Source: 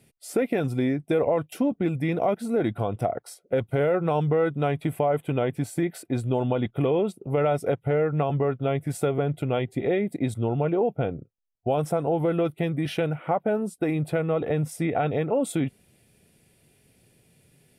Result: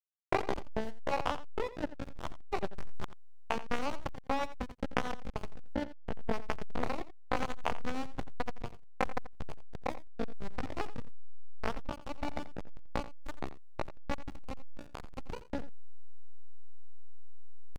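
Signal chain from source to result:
low-pass filter 1,800 Hz 24 dB per octave
parametric band 930 Hz −8 dB 0.66 octaves
power curve on the samples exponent 3
pitch shifter +9.5 semitones
upward compression, threshold −42 dBFS
slack as between gear wheels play −25 dBFS
single-tap delay 86 ms −15 dB
level +5 dB

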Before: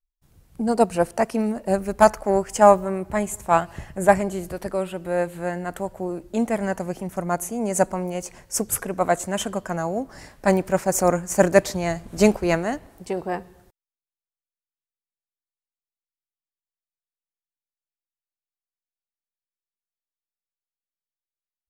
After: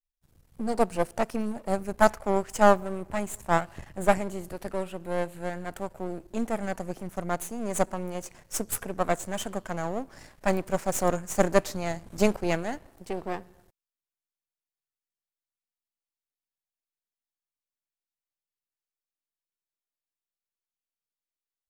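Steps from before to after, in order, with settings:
gain on one half-wave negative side −12 dB
level −3 dB

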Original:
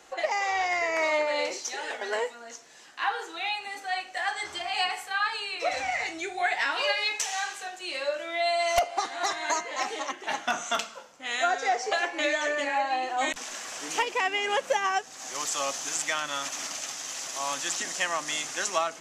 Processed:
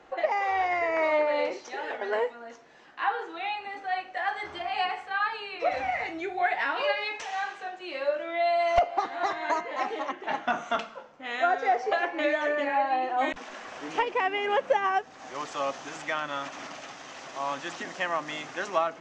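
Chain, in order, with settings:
head-to-tape spacing loss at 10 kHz 34 dB
level +4.5 dB

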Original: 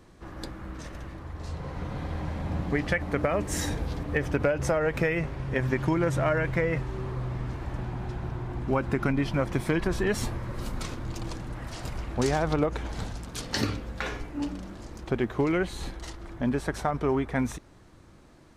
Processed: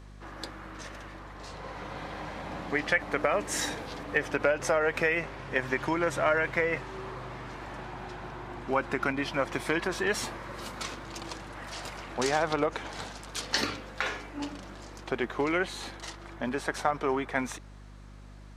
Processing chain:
meter weighting curve A
mains hum 50 Hz, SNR 16 dB
level +2 dB

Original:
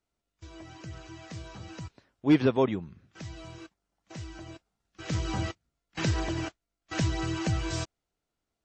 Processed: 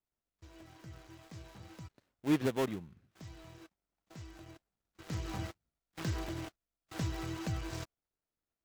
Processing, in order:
gap after every zero crossing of 0.25 ms
level −8 dB

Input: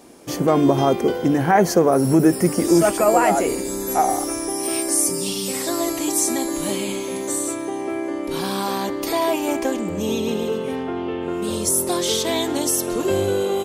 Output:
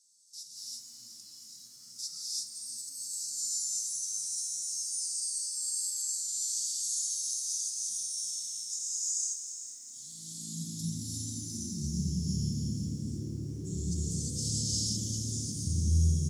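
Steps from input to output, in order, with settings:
inverse Chebyshev band-stop filter 490–3,200 Hz, stop band 50 dB
parametric band 530 Hz −13 dB 1.8 octaves
compressor whose output falls as the input rises −28 dBFS, ratio −0.5
high-pass filter sweep 1,800 Hz → 100 Hz, 0:08.05–0:09.19
on a send: echo with shifted repeats 340 ms, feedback 56%, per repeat +75 Hz, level −11 dB
on the sum: reverb whose tail is shaped and stops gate 320 ms rising, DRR −6 dB
change of speed 0.837×
low-pass filter 5,300 Hz 12 dB per octave
high-shelf EQ 3,200 Hz +6 dB
feedback echo at a low word length 222 ms, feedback 35%, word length 8 bits, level −12 dB
level −8.5 dB

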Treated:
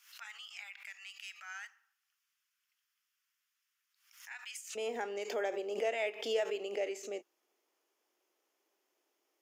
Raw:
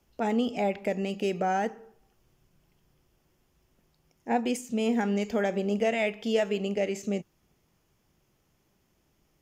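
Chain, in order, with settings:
Butterworth high-pass 1,300 Hz 36 dB per octave, from 0:04.75 330 Hz
background raised ahead of every attack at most 100 dB per second
level −7 dB

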